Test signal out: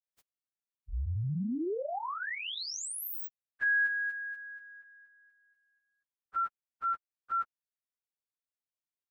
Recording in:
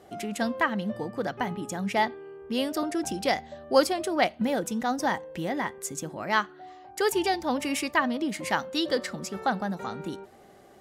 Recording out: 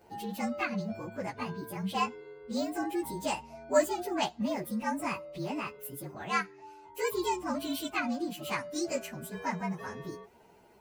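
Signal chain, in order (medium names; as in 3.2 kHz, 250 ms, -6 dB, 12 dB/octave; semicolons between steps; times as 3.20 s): frequency axis rescaled in octaves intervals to 115%; trim -2.5 dB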